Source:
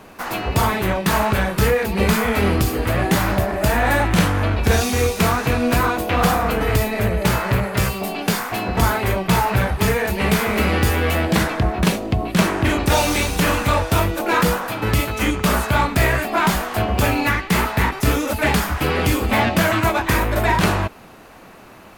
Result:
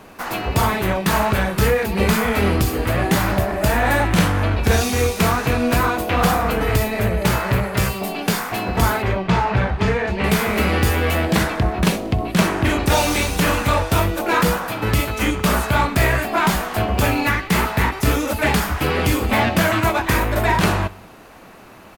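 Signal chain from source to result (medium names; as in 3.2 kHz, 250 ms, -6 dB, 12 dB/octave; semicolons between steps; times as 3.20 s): 9.02–10.24 s: distance through air 140 m; feedback delay 63 ms, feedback 55%, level -21 dB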